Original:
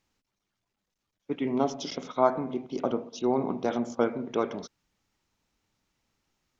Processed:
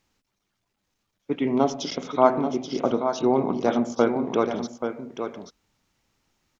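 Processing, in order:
single-tap delay 831 ms −8 dB
level +5 dB

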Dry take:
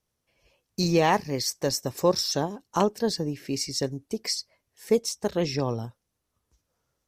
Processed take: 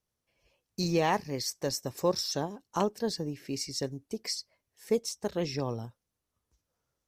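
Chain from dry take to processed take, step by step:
floating-point word with a short mantissa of 6 bits
level −5.5 dB

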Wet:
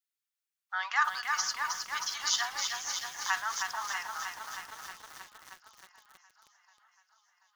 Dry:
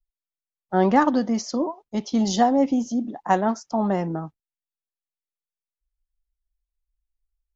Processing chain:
Butterworth high-pass 1,200 Hz 36 dB per octave
in parallel at −2.5 dB: downward compressor 5 to 1, threshold −42 dBFS, peak gain reduction 17 dB
on the sum: feedback echo with a long and a short gap by turns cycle 735 ms, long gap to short 1.5 to 1, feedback 61%, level −19.5 dB
feedback echo at a low word length 315 ms, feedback 80%, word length 8 bits, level −4.5 dB

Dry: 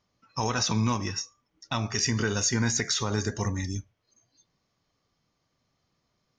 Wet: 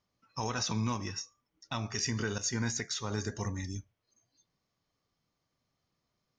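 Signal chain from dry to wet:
0:02.38–0:03.04: downward expander −24 dBFS
level −6.5 dB

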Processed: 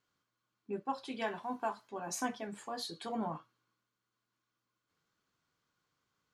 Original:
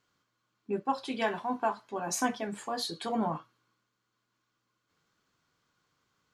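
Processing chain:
0:01.42–0:01.87: high-shelf EQ 8,200 Hz → 5,500 Hz +10 dB
level −6.5 dB

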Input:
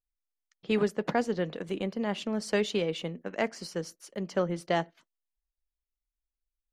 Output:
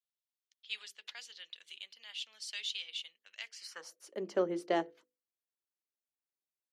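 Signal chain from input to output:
high-pass filter sweep 3,300 Hz → 330 Hz, 0:03.53–0:04.08
mains-hum notches 50/100/150/200/250/300/350/400/450/500 Hz
level −6 dB

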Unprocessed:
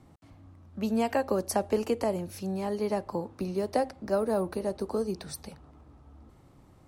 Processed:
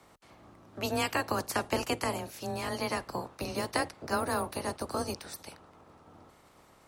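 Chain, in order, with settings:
ceiling on every frequency bin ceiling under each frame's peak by 21 dB
frequency shifter +20 Hz
level −3 dB

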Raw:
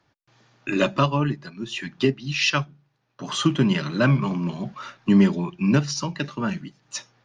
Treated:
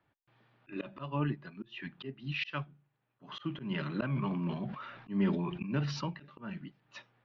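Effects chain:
low-pass filter 3,300 Hz 24 dB per octave
volume swells 239 ms
0:03.60–0:06.10: level that may fall only so fast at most 59 dB per second
level −8.5 dB

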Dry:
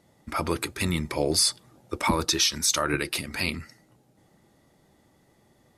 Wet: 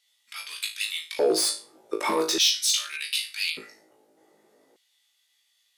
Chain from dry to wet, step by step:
flutter between parallel walls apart 3.2 metres, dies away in 0.32 s
gain into a clipping stage and back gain 17 dB
auto-filter high-pass square 0.42 Hz 420–3,100 Hz
level −3 dB

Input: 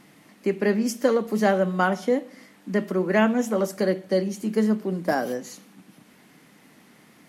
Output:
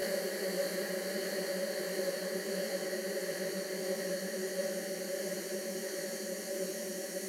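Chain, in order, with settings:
RIAA equalisation recording
volume swells 346 ms
extreme stretch with random phases 49×, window 1.00 s, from 0:04.03
micro pitch shift up and down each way 52 cents

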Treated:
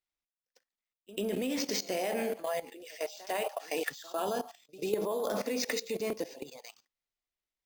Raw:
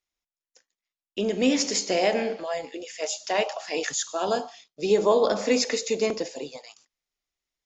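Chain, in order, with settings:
backwards echo 101 ms −21.5 dB
bad sample-rate conversion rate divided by 4×, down filtered, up hold
output level in coarse steps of 16 dB

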